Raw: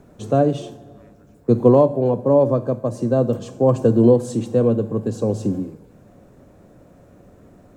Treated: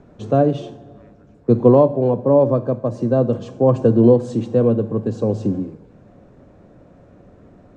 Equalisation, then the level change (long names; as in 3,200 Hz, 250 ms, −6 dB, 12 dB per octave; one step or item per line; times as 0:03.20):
high-frequency loss of the air 120 metres
+1.5 dB